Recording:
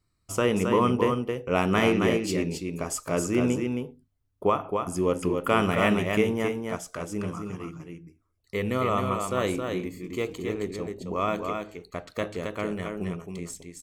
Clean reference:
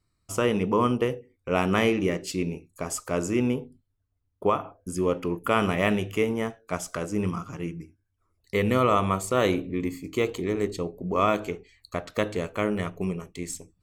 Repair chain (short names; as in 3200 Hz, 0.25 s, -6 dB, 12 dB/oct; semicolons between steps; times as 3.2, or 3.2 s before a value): inverse comb 0.269 s -5 dB; gain 0 dB, from 6.64 s +4.5 dB